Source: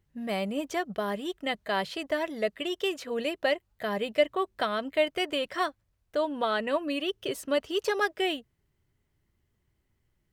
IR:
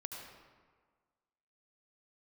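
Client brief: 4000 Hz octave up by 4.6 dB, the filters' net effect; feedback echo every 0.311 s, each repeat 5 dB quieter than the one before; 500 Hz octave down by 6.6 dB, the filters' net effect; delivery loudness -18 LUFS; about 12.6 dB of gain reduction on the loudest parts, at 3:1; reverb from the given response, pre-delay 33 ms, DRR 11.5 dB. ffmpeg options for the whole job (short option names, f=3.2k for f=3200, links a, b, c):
-filter_complex "[0:a]equalizer=f=500:t=o:g=-9,equalizer=f=4k:t=o:g=7,acompressor=threshold=-40dB:ratio=3,aecho=1:1:311|622|933|1244|1555|1866|2177:0.562|0.315|0.176|0.0988|0.0553|0.031|0.0173,asplit=2[a][b];[1:a]atrim=start_sample=2205,adelay=33[c];[b][c]afir=irnorm=-1:irlink=0,volume=-10dB[d];[a][d]amix=inputs=2:normalize=0,volume=21dB"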